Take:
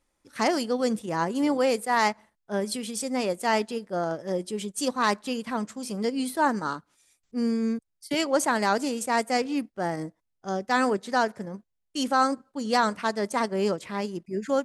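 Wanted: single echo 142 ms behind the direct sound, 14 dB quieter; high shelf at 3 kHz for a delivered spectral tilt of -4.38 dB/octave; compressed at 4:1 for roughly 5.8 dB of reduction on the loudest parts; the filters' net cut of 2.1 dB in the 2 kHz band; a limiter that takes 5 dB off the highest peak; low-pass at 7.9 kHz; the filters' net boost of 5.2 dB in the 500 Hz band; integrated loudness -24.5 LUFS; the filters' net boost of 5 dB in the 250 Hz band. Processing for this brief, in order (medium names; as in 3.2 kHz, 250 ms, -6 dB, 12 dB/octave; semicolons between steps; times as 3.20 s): low-pass 7.9 kHz; peaking EQ 250 Hz +4.5 dB; peaking EQ 500 Hz +5 dB; peaking EQ 2 kHz -5.5 dB; treble shelf 3 kHz +7.5 dB; compression 4:1, threshold -21 dBFS; peak limiter -16 dBFS; delay 142 ms -14 dB; trim +3 dB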